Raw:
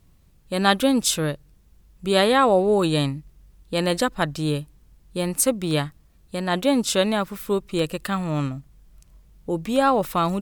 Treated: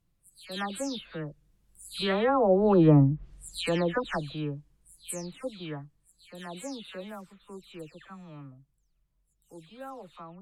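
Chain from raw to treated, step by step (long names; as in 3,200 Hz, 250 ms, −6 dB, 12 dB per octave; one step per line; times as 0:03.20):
every frequency bin delayed by itself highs early, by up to 279 ms
source passing by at 0:03.06, 5 m/s, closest 1.3 metres
treble cut that deepens with the level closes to 940 Hz, closed at −24.5 dBFS
level +5.5 dB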